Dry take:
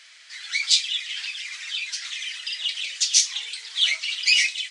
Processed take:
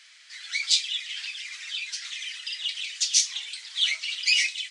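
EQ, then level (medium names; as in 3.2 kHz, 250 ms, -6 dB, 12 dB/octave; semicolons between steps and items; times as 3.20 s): high-pass 900 Hz 6 dB/octave; -3.0 dB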